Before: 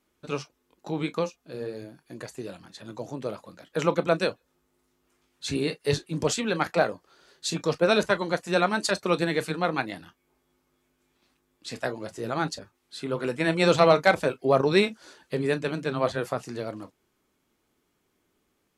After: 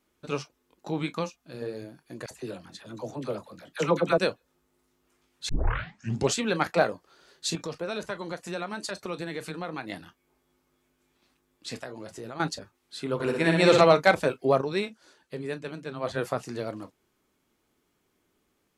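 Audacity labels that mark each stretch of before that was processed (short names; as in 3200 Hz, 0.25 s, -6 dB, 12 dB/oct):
0.990000	1.620000	bell 440 Hz -8 dB 0.59 oct
2.260000	4.180000	dispersion lows, late by 49 ms, half as late at 860 Hz
5.490000	5.490000	tape start 0.85 s
7.550000	9.900000	compressor 2.5:1, threshold -34 dBFS
11.830000	12.400000	compressor 4:1, threshold -36 dBFS
13.140000	13.810000	flutter echo walls apart 10.2 m, dies away in 0.84 s
14.490000	16.190000	dip -8 dB, fades 0.17 s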